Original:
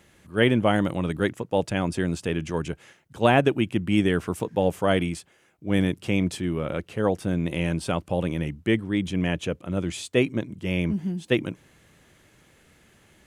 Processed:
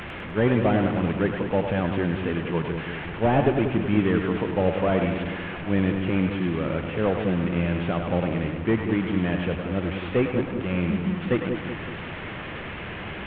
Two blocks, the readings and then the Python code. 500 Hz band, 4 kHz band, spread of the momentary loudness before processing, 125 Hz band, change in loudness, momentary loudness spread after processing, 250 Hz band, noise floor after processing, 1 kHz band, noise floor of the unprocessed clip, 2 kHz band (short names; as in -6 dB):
+0.5 dB, -4.0 dB, 9 LU, +1.5 dB, 0.0 dB, 10 LU, +1.0 dB, -35 dBFS, +0.5 dB, -60 dBFS, 0.0 dB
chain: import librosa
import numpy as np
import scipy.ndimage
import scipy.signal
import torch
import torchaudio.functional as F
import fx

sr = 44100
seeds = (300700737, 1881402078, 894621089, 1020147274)

p1 = fx.delta_mod(x, sr, bps=16000, step_db=-29.5)
y = p1 + fx.echo_split(p1, sr, split_hz=490.0, low_ms=186, high_ms=101, feedback_pct=52, wet_db=-5.5, dry=0)